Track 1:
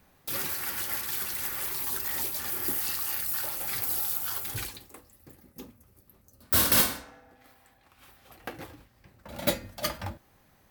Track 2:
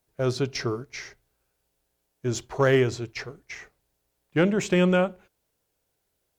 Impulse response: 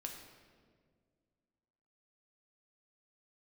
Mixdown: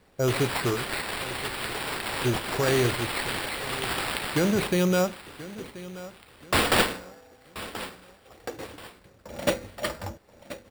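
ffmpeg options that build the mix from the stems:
-filter_complex "[0:a]equalizer=f=450:w=2.2:g=10,volume=-0.5dB,asplit=2[a][b];[b]volume=-14.5dB[c];[1:a]alimiter=limit=-17.5dB:level=0:latency=1:release=29,volume=1.5dB,asplit=2[d][e];[e]volume=-17dB[f];[c][f]amix=inputs=2:normalize=0,aecho=0:1:1031|2062|3093|4124|5155:1|0.36|0.13|0.0467|0.0168[g];[a][d][g]amix=inputs=3:normalize=0,acrusher=samples=7:mix=1:aa=0.000001"

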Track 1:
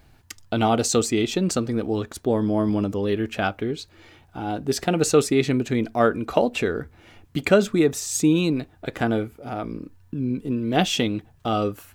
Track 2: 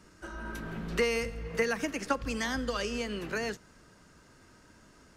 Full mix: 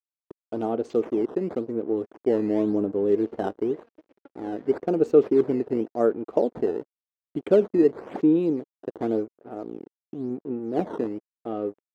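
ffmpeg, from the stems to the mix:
-filter_complex "[0:a]dynaudnorm=f=350:g=13:m=8dB,acrusher=samples=11:mix=1:aa=0.000001:lfo=1:lforange=17.6:lforate=0.93,volume=0.5dB[a];[1:a]afwtdn=0.00708,acompressor=threshold=-36dB:ratio=4,adelay=2150,volume=0.5dB[b];[a][b]amix=inputs=2:normalize=0,aeval=exprs='sgn(val(0))*max(abs(val(0))-0.02,0)':c=same,bandpass=f=390:t=q:w=1.9:csg=0"

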